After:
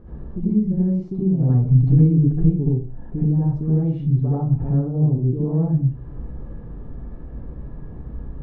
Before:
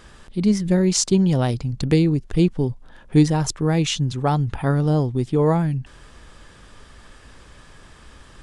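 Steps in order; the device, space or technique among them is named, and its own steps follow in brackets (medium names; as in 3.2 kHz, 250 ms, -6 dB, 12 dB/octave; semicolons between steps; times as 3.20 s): television next door (compression 4:1, threshold -34 dBFS, peak gain reduction 20 dB; low-pass 360 Hz 12 dB/octave; reverberation RT60 0.45 s, pre-delay 65 ms, DRR -8.5 dB); 1.49–2.69 s: comb 7.1 ms, depth 92%; trim +5.5 dB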